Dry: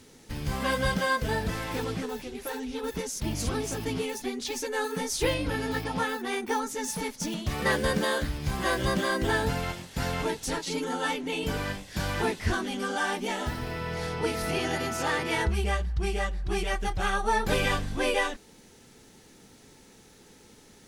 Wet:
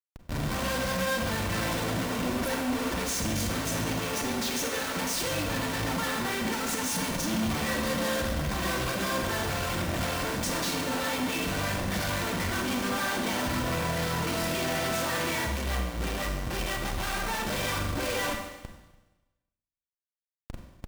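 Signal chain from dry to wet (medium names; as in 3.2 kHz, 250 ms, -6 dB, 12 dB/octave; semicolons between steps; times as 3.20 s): Schmitt trigger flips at -43 dBFS; comb of notches 420 Hz; Schroeder reverb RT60 1.1 s, combs from 32 ms, DRR 3.5 dB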